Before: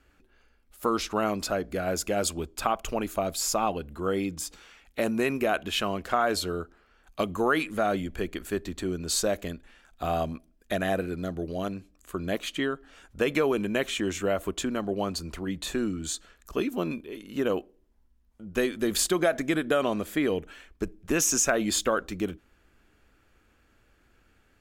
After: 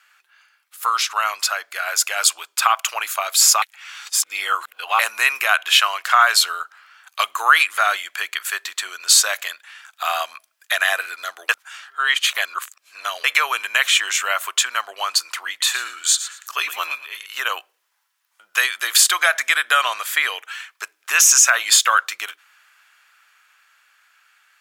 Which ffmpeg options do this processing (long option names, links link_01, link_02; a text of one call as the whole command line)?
ffmpeg -i in.wav -filter_complex "[0:a]asettb=1/sr,asplit=3[link_01][link_02][link_03];[link_01]atrim=end=15.494[link_04];[link_02]atrim=start=15.49:end=17.26,asetpts=PTS-STARTPTS,afade=type=in:duration=0.004:curve=qsin,afade=type=out:start_time=1.766:duration=0.004:curve=qsin,aecho=1:1:113|226|339:0.237|0.0522|0.0115,atrim=end_sample=78057[link_05];[link_03]atrim=start=17.256[link_06];[link_04][link_05]acrossfade=duration=0.004:curve1=hsin:curve2=qsin[link_07];[link_07][link_06]acrossfade=duration=0.004:curve1=qsin:curve2=hsin,asplit=5[link_08][link_09][link_10][link_11][link_12];[link_08]atrim=end=3.622[link_13];[link_09]atrim=start=3.618:end=4.992,asetpts=PTS-STARTPTS,areverse[link_14];[link_10]atrim=start=4.988:end=11.492[link_15];[link_11]atrim=start=11.488:end=13.242,asetpts=PTS-STARTPTS,areverse[link_16];[link_12]atrim=start=13.238[link_17];[link_13][link_14]acrossfade=duration=0.004:curve1=hsin:curve2=hsin[link_18];[link_18][link_15]acrossfade=duration=0.004:curve1=hsin:curve2=hsin[link_19];[link_19][link_16]acrossfade=duration=0.004:curve1=hsin:curve2=hsin[link_20];[link_20][link_17]acrossfade=duration=0.004:curve1=hsin:curve2=hsin,highpass=frequency=1100:width=0.5412,highpass=frequency=1100:width=1.3066,dynaudnorm=framelen=210:gausssize=21:maxgain=4dB,alimiter=level_in=13.5dB:limit=-1dB:release=50:level=0:latency=1,volume=-1dB" out.wav